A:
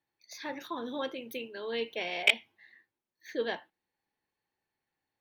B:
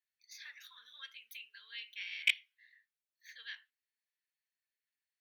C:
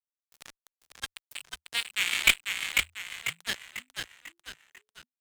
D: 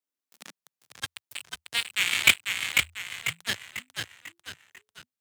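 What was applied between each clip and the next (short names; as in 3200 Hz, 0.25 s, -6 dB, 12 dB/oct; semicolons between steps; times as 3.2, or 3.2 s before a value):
inverse Chebyshev high-pass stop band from 810 Hz, stop band 40 dB; gain -5.5 dB
fuzz box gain 35 dB, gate -43 dBFS; frequency-shifting echo 0.495 s, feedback 44%, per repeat -86 Hz, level -4.5 dB
high-pass sweep 280 Hz -> 96 Hz, 0.16–1.11; gain +2.5 dB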